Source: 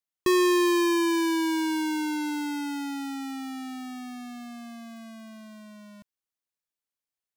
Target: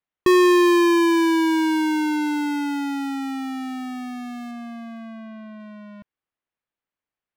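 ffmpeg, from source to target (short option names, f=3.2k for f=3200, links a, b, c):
-filter_complex "[0:a]acrossover=split=3100[a][b];[a]acontrast=79[c];[b]agate=range=-20dB:threshold=-57dB:ratio=16:detection=peak[d];[c][d]amix=inputs=2:normalize=0,asettb=1/sr,asplit=3[e][f][g];[e]atrim=end=4.514[h];[f]atrim=start=4.51:end=5.6,asetpts=PTS-STARTPTS,afade=t=in:d=0.004:c=qsin,afade=t=out:st=1.086:d=0.004:c=qsin,highshelf=f=4.2k:g=-5.5[i];[g]atrim=start=5.596[j];[h][i]acrossfade=d=0.004:c1=hsin:c2=qsin[k];[k][j]acrossfade=d=0.004:c1=qsin:c2=hsin"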